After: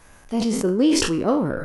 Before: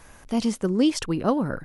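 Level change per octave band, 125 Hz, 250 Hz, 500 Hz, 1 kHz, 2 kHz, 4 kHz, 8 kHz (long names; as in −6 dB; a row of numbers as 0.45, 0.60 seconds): +1.0, +3.0, +4.5, +1.5, +5.0, +5.5, +8.0 decibels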